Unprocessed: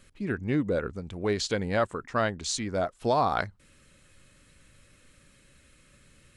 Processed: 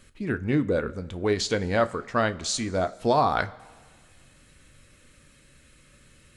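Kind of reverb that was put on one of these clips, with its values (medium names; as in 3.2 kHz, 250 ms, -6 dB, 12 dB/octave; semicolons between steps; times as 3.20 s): two-slope reverb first 0.24 s, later 1.7 s, from -18 dB, DRR 10.5 dB; trim +2.5 dB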